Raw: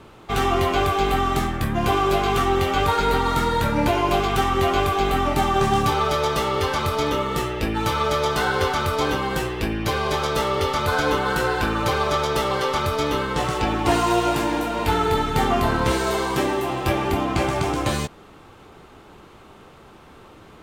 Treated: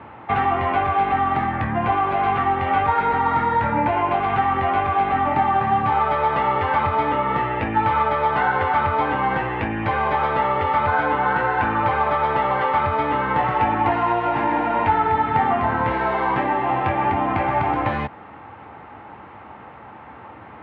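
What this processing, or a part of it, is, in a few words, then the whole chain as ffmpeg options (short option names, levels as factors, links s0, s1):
bass amplifier: -af "acompressor=threshold=0.0708:ratio=6,highpass=f=76:w=0.5412,highpass=f=76:w=1.3066,equalizer=f=160:t=q:w=4:g=-6,equalizer=f=390:t=q:w=4:g=-8,equalizer=f=850:t=q:w=4:g=9,equalizer=f=1900:t=q:w=4:g=5,lowpass=f=2400:w=0.5412,lowpass=f=2400:w=1.3066,volume=1.78"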